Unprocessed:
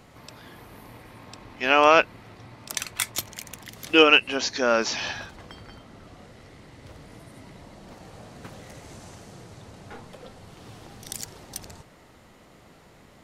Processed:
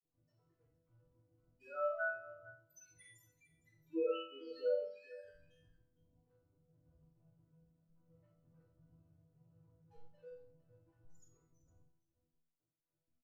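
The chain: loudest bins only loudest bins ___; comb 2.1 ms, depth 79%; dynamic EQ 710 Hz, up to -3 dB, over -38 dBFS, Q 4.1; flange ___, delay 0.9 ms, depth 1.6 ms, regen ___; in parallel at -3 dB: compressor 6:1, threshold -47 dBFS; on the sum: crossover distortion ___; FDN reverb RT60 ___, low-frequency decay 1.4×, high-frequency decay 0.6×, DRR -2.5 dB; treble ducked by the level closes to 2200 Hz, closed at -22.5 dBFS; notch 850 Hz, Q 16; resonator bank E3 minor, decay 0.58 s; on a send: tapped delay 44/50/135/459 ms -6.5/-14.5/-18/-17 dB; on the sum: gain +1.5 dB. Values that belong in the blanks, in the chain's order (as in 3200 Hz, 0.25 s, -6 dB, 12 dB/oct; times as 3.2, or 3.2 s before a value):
2, 1 Hz, +70%, -59 dBFS, 0.32 s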